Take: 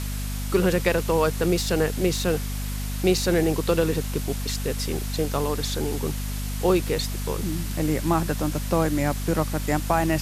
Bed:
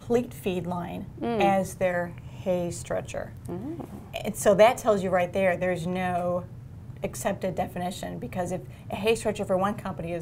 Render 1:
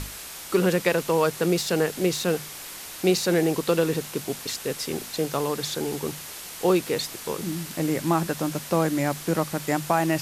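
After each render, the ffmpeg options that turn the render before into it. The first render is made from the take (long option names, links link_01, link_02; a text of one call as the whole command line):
ffmpeg -i in.wav -af "bandreject=frequency=50:width_type=h:width=6,bandreject=frequency=100:width_type=h:width=6,bandreject=frequency=150:width_type=h:width=6,bandreject=frequency=200:width_type=h:width=6,bandreject=frequency=250:width_type=h:width=6" out.wav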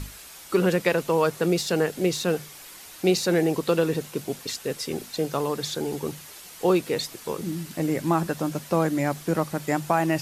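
ffmpeg -i in.wav -af "afftdn=noise_reduction=7:noise_floor=-39" out.wav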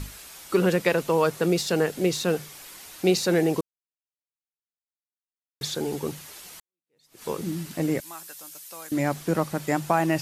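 ffmpeg -i in.wav -filter_complex "[0:a]asettb=1/sr,asplit=3[link_01][link_02][link_03];[link_01]atrim=end=8.004[link_04];[link_02]atrim=start=8:end=8.92,asetpts=PTS-STARTPTS,afade=type=in:duration=0.004:curve=qsin,afade=type=out:start_time=0.916:duration=0.004:curve=qsin,aderivative[link_05];[link_03]atrim=start=8.916[link_06];[link_04][link_05]acrossfade=duration=0.004:curve1=hsin:curve2=qsin[link_07];[link_07][link_06]acrossfade=duration=0.004:curve1=qsin:curve2=hsin,asplit=4[link_08][link_09][link_10][link_11];[link_08]atrim=end=3.61,asetpts=PTS-STARTPTS,afade=type=out:start_time=3.606:duration=0.004:curve=hsin[link_12];[link_09]atrim=start=3.61:end=5.61,asetpts=PTS-STARTPTS,volume=0[link_13];[link_10]atrim=start=5.61:end=6.6,asetpts=PTS-STARTPTS,afade=type=in:duration=0.004:curve=hsin,afade=type=out:start_time=0.986:duration=0.004:curve=hsin[link_14];[link_11]atrim=start=6.6,asetpts=PTS-STARTPTS,afade=type=in:duration=0.63:curve=exp[link_15];[link_12][link_13][link_14][link_15]concat=n=4:v=0:a=1" out.wav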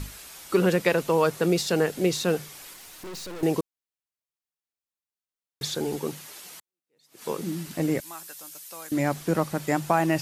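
ffmpeg -i in.wav -filter_complex "[0:a]asettb=1/sr,asplit=3[link_01][link_02][link_03];[link_01]atrim=end=2.734[link_04];[link_02]atrim=start=2.73:end=3.43,asetpts=PTS-STARTPTS,afade=type=in:duration=0.004:curve=qsin,afade=type=out:start_time=0.696:duration=0.004:curve=qsin,aeval=exprs='(tanh(70.8*val(0)+0.4)-tanh(0.4))/70.8':channel_layout=same[link_05];[link_03]atrim=start=3.426[link_06];[link_04][link_05]acrossfade=duration=0.004:curve1=hsin:curve2=qsin[link_07];[link_07][link_06]acrossfade=duration=0.004:curve1=qsin:curve2=hsin,asettb=1/sr,asplit=3[link_08][link_09][link_10];[link_08]atrim=end=5.964[link_11];[link_09]atrim=start=5.96:end=7.67,asetpts=PTS-STARTPTS,afade=type=in:duration=0.004:curve=qsin,afade=type=out:start_time=1.706:duration=0.004:curve=qsin,highpass=140[link_12];[link_10]atrim=start=7.666[link_13];[link_11][link_12]acrossfade=duration=0.004:curve1=hsin:curve2=qsin[link_14];[link_14][link_13]acrossfade=duration=0.004:curve1=qsin:curve2=hsin" out.wav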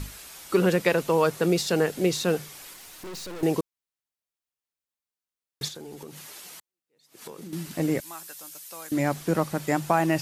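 ffmpeg -i in.wav -filter_complex "[0:a]asettb=1/sr,asplit=3[link_01][link_02][link_03];[link_01]atrim=end=5.684[link_04];[link_02]atrim=start=5.68:end=7.53,asetpts=PTS-STARTPTS,afade=type=in:duration=0.004:curve=qsin,afade=type=out:start_time=1.846:duration=0.004:curve=qsin,acompressor=threshold=-37dB:ratio=8:attack=3.2:release=140:knee=1:detection=peak[link_05];[link_03]atrim=start=7.526[link_06];[link_04][link_05]acrossfade=duration=0.004:curve1=hsin:curve2=qsin[link_07];[link_07][link_06]acrossfade=duration=0.004:curve1=qsin:curve2=hsin" out.wav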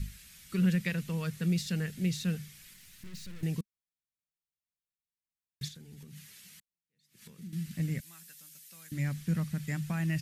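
ffmpeg -i in.wav -af "firequalizer=gain_entry='entry(200,0);entry(300,-19);entry(820,-26);entry(1800,-8);entry(5100,-10)':delay=0.05:min_phase=1" out.wav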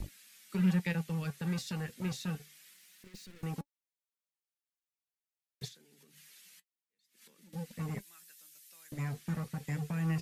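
ffmpeg -i in.wav -filter_complex "[0:a]acrossover=split=250|1700[link_01][link_02][link_03];[link_01]acrusher=bits=5:mix=0:aa=0.5[link_04];[link_04][link_02][link_03]amix=inputs=3:normalize=0,flanger=delay=3.3:depth=5.2:regen=64:speed=0.27:shape=triangular" out.wav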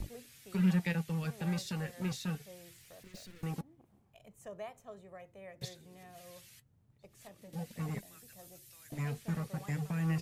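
ffmpeg -i in.wav -i bed.wav -filter_complex "[1:a]volume=-27dB[link_01];[0:a][link_01]amix=inputs=2:normalize=0" out.wav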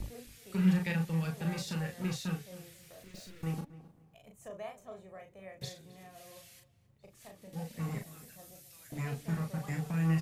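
ffmpeg -i in.wav -filter_complex "[0:a]asplit=2[link_01][link_02];[link_02]adelay=37,volume=-4.5dB[link_03];[link_01][link_03]amix=inputs=2:normalize=0,asplit=2[link_04][link_05];[link_05]adelay=268,lowpass=frequency=2500:poles=1,volume=-17dB,asplit=2[link_06][link_07];[link_07]adelay=268,lowpass=frequency=2500:poles=1,volume=0.26[link_08];[link_04][link_06][link_08]amix=inputs=3:normalize=0" out.wav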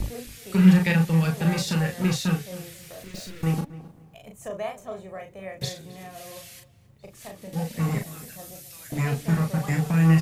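ffmpeg -i in.wav -af "volume=11.5dB" out.wav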